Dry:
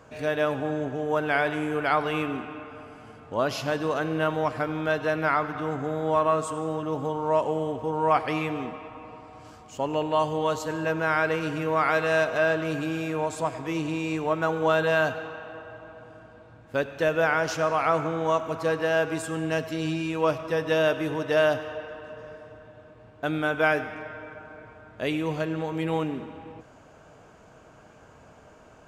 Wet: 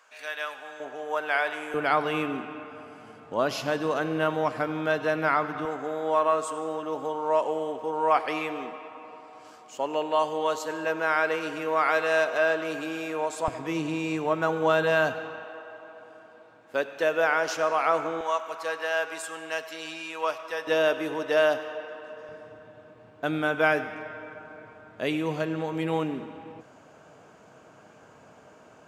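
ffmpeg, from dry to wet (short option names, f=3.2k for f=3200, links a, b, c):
-af "asetnsamples=n=441:p=0,asendcmd='0.8 highpass f 640;1.74 highpass f 160;5.65 highpass f 360;13.48 highpass f 150;15.44 highpass f 350;18.21 highpass f 750;20.67 highpass f 300;22.29 highpass f 140',highpass=1.3k"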